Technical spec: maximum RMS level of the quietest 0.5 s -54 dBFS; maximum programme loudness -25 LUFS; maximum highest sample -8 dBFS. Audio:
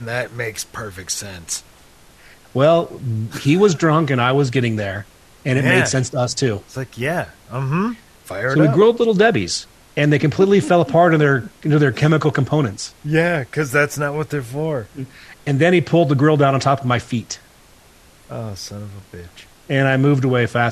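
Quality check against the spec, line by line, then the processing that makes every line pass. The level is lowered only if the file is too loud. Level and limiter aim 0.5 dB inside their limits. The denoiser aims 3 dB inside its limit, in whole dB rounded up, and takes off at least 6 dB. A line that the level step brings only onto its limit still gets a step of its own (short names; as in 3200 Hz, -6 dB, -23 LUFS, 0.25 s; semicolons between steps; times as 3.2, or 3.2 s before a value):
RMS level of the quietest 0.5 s -48 dBFS: fail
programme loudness -17.5 LUFS: fail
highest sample -2.0 dBFS: fail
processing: gain -8 dB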